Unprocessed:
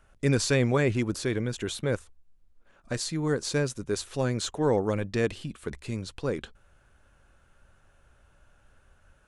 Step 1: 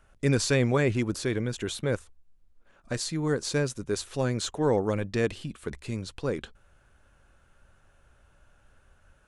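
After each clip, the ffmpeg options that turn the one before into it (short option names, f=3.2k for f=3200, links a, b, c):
-af anull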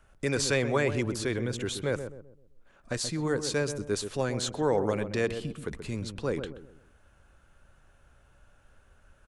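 -filter_complex "[0:a]acrossover=split=370|3300[a][b][c];[a]alimiter=level_in=3dB:limit=-24dB:level=0:latency=1,volume=-3dB[d];[d][b][c]amix=inputs=3:normalize=0,asplit=2[e][f];[f]adelay=129,lowpass=f=810:p=1,volume=-7.5dB,asplit=2[g][h];[h]adelay=129,lowpass=f=810:p=1,volume=0.4,asplit=2[i][j];[j]adelay=129,lowpass=f=810:p=1,volume=0.4,asplit=2[k][l];[l]adelay=129,lowpass=f=810:p=1,volume=0.4,asplit=2[m][n];[n]adelay=129,lowpass=f=810:p=1,volume=0.4[o];[e][g][i][k][m][o]amix=inputs=6:normalize=0"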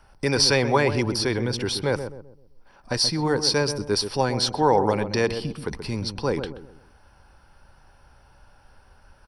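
-af "superequalizer=9b=2.51:14b=2.82:15b=0.251,volume=5.5dB"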